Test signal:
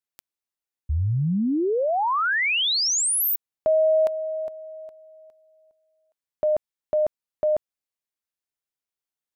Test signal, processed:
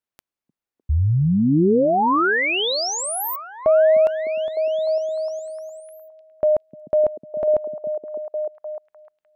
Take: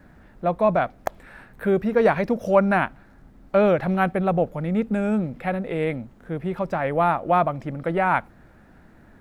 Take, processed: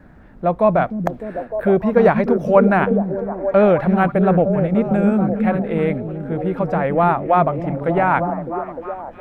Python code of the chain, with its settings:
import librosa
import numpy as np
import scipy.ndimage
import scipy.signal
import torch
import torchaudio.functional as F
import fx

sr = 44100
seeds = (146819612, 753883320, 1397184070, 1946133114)

y = fx.high_shelf(x, sr, hz=2900.0, db=-10.0)
y = fx.echo_stepped(y, sr, ms=303, hz=200.0, octaves=0.7, feedback_pct=70, wet_db=-2)
y = y * 10.0 ** (5.0 / 20.0)